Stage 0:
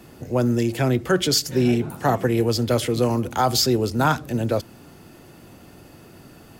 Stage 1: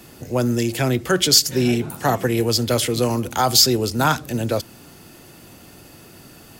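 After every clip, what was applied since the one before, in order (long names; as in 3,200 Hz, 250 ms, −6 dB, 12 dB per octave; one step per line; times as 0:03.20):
high-shelf EQ 2,400 Hz +8.5 dB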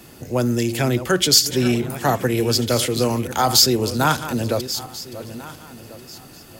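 feedback delay that plays each chunk backwards 695 ms, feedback 43%, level −12.5 dB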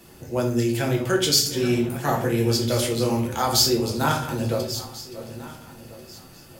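rectangular room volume 63 cubic metres, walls mixed, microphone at 0.7 metres
level −7 dB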